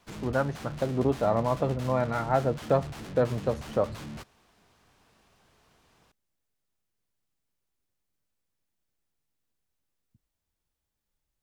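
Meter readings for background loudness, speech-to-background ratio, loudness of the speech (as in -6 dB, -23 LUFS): -40.5 LUFS, 12.0 dB, -28.5 LUFS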